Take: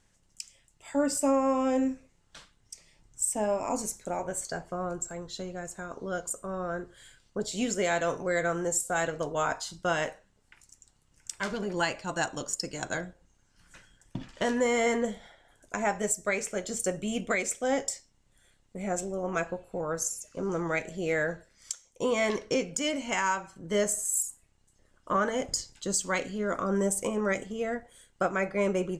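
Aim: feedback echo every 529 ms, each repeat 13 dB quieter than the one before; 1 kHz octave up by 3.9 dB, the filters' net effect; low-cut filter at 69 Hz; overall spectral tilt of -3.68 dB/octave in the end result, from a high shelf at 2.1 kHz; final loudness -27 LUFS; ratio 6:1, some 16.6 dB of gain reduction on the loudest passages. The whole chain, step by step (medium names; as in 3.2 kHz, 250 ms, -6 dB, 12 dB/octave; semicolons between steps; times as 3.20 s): high-pass 69 Hz; peaking EQ 1 kHz +6 dB; treble shelf 2.1 kHz -4 dB; compression 6:1, threshold -39 dBFS; feedback delay 529 ms, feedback 22%, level -13 dB; trim +15.5 dB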